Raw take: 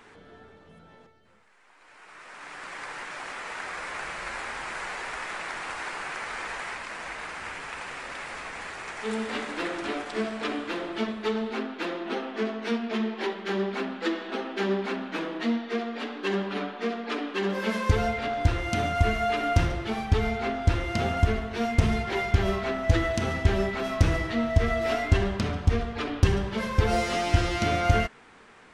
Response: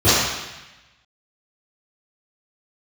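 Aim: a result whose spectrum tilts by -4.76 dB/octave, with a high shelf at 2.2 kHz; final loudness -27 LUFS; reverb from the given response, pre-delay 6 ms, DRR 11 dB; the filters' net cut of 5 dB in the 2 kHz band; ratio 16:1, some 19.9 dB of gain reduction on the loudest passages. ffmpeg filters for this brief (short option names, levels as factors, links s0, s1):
-filter_complex "[0:a]equalizer=f=2000:t=o:g=-4,highshelf=f=2200:g=-4,acompressor=threshold=0.0178:ratio=16,asplit=2[s0][s1];[1:a]atrim=start_sample=2205,adelay=6[s2];[s1][s2]afir=irnorm=-1:irlink=0,volume=0.015[s3];[s0][s3]amix=inputs=2:normalize=0,volume=3.98"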